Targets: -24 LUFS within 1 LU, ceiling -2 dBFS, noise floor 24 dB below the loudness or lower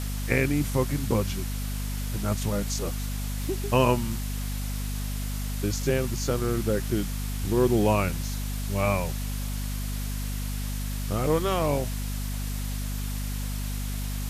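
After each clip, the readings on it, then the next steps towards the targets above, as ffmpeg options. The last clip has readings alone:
hum 50 Hz; harmonics up to 250 Hz; hum level -28 dBFS; noise floor -31 dBFS; noise floor target -53 dBFS; loudness -28.5 LUFS; peak -8.0 dBFS; loudness target -24.0 LUFS
-> -af "bandreject=f=50:t=h:w=6,bandreject=f=100:t=h:w=6,bandreject=f=150:t=h:w=6,bandreject=f=200:t=h:w=6,bandreject=f=250:t=h:w=6"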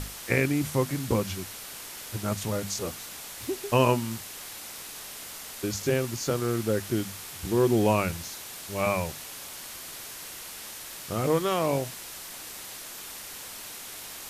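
hum none; noise floor -41 dBFS; noise floor target -54 dBFS
-> -af "afftdn=nr=13:nf=-41"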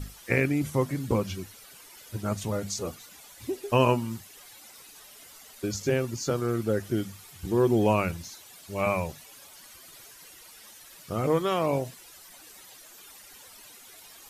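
noise floor -50 dBFS; noise floor target -52 dBFS
-> -af "afftdn=nr=6:nf=-50"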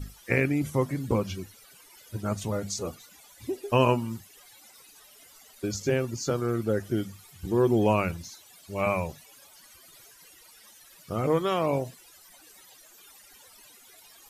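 noise floor -54 dBFS; loudness -28.0 LUFS; peak -9.0 dBFS; loudness target -24.0 LUFS
-> -af "volume=4dB"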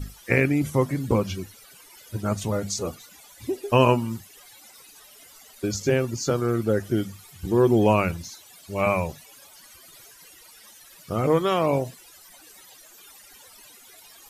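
loudness -24.0 LUFS; peak -5.0 dBFS; noise floor -50 dBFS

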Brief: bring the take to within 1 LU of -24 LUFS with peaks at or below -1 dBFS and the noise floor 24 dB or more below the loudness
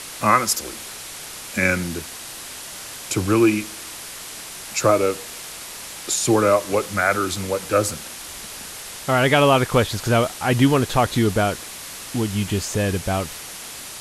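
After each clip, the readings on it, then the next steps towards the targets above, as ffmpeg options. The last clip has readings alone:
noise floor -36 dBFS; noise floor target -45 dBFS; loudness -20.5 LUFS; peak -2.0 dBFS; loudness target -24.0 LUFS
-> -af "afftdn=nr=9:nf=-36"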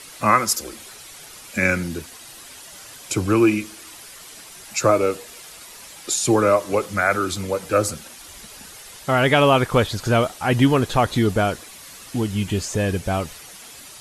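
noise floor -42 dBFS; noise floor target -45 dBFS
-> -af "afftdn=nr=6:nf=-42"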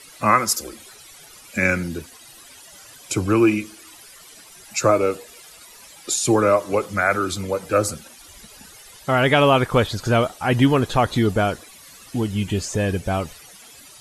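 noise floor -46 dBFS; loudness -20.5 LUFS; peak -2.5 dBFS; loudness target -24.0 LUFS
-> -af "volume=-3.5dB"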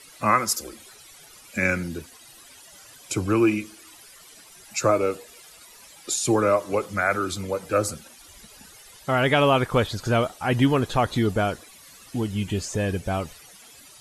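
loudness -24.0 LUFS; peak -6.0 dBFS; noise floor -49 dBFS

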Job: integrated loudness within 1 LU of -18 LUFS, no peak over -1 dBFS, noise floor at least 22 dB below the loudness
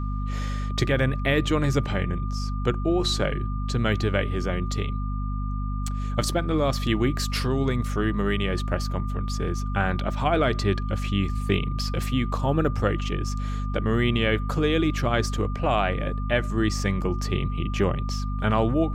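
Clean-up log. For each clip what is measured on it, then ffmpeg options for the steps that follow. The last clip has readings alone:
hum 50 Hz; harmonics up to 250 Hz; hum level -25 dBFS; steady tone 1200 Hz; tone level -38 dBFS; loudness -25.5 LUFS; peak -7.5 dBFS; loudness target -18.0 LUFS
-> -af "bandreject=f=50:t=h:w=6,bandreject=f=100:t=h:w=6,bandreject=f=150:t=h:w=6,bandreject=f=200:t=h:w=6,bandreject=f=250:t=h:w=6"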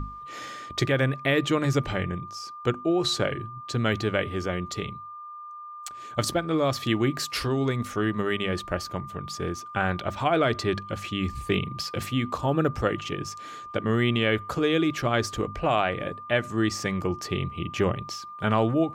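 hum none; steady tone 1200 Hz; tone level -38 dBFS
-> -af "bandreject=f=1.2k:w=30"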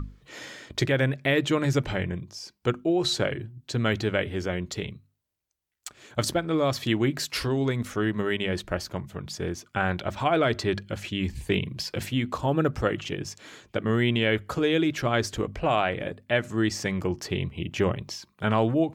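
steady tone none; loudness -27.0 LUFS; peak -9.0 dBFS; loudness target -18.0 LUFS
-> -af "volume=9dB,alimiter=limit=-1dB:level=0:latency=1"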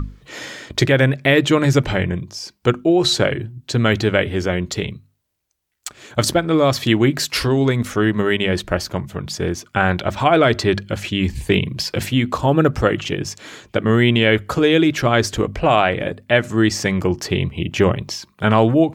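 loudness -18.0 LUFS; peak -1.0 dBFS; noise floor -62 dBFS

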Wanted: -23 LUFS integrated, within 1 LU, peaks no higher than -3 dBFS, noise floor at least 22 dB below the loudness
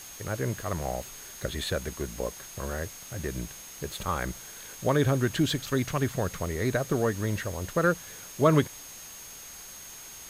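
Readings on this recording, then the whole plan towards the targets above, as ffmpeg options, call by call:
steady tone 6500 Hz; tone level -46 dBFS; noise floor -45 dBFS; noise floor target -52 dBFS; loudness -29.5 LUFS; peak -8.5 dBFS; loudness target -23.0 LUFS
-> -af "bandreject=f=6.5k:w=30"
-af "afftdn=nr=7:nf=-45"
-af "volume=6.5dB,alimiter=limit=-3dB:level=0:latency=1"

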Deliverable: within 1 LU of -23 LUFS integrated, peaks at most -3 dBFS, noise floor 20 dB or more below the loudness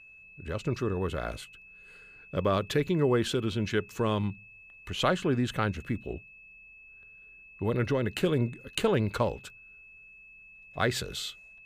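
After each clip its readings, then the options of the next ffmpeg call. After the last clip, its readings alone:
steady tone 2600 Hz; tone level -50 dBFS; loudness -30.0 LUFS; peak -11.0 dBFS; loudness target -23.0 LUFS
-> -af "bandreject=f=2.6k:w=30"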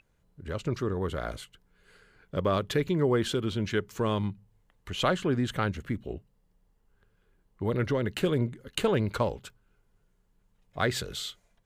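steady tone none; loudness -30.0 LUFS; peak -10.5 dBFS; loudness target -23.0 LUFS
-> -af "volume=7dB"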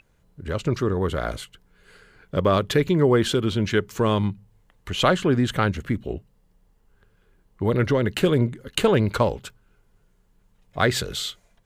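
loudness -23.0 LUFS; peak -3.5 dBFS; noise floor -64 dBFS

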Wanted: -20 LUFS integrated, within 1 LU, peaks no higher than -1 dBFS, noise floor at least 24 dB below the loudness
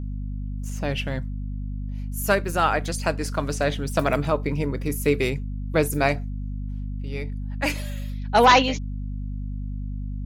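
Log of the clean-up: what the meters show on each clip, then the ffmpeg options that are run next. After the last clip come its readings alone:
hum 50 Hz; harmonics up to 250 Hz; hum level -27 dBFS; loudness -25.0 LUFS; peak -6.5 dBFS; loudness target -20.0 LUFS
-> -af "bandreject=f=50:t=h:w=6,bandreject=f=100:t=h:w=6,bandreject=f=150:t=h:w=6,bandreject=f=200:t=h:w=6,bandreject=f=250:t=h:w=6"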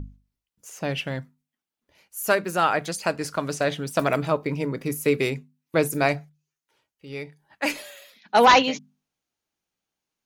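hum none; loudness -23.5 LUFS; peak -7.0 dBFS; loudness target -20.0 LUFS
-> -af "volume=3.5dB"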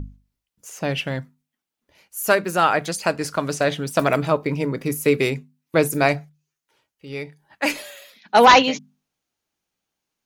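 loudness -20.0 LUFS; peak -3.5 dBFS; noise floor -85 dBFS

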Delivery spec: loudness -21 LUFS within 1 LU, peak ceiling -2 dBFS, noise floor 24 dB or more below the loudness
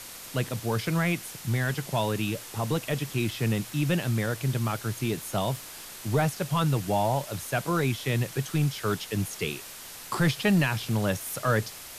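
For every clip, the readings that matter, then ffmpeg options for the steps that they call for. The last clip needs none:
noise floor -43 dBFS; noise floor target -53 dBFS; loudness -28.5 LUFS; peak -13.0 dBFS; loudness target -21.0 LUFS
-> -af "afftdn=nr=10:nf=-43"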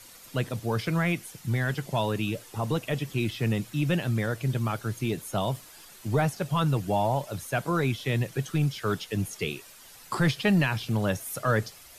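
noise floor -50 dBFS; noise floor target -53 dBFS
-> -af "afftdn=nr=6:nf=-50"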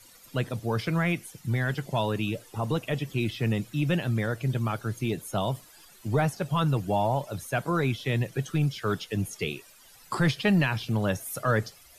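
noise floor -54 dBFS; loudness -28.5 LUFS; peak -13.5 dBFS; loudness target -21.0 LUFS
-> -af "volume=7.5dB"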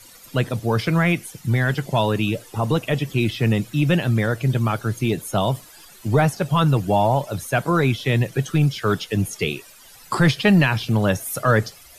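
loudness -21.0 LUFS; peak -6.0 dBFS; noise floor -46 dBFS

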